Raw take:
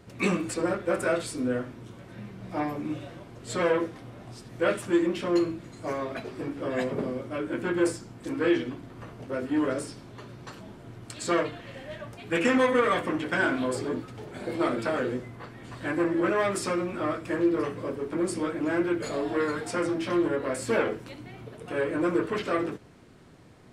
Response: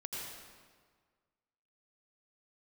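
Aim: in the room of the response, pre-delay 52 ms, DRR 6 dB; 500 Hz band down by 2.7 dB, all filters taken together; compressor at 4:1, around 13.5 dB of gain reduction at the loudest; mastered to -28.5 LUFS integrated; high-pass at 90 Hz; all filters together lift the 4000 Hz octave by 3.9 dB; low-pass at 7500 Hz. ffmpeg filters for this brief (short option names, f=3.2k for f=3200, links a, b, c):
-filter_complex "[0:a]highpass=90,lowpass=7.5k,equalizer=f=500:t=o:g=-3.5,equalizer=f=4k:t=o:g=5.5,acompressor=threshold=-37dB:ratio=4,asplit=2[a][b];[1:a]atrim=start_sample=2205,adelay=52[c];[b][c]afir=irnorm=-1:irlink=0,volume=-6.5dB[d];[a][d]amix=inputs=2:normalize=0,volume=10.5dB"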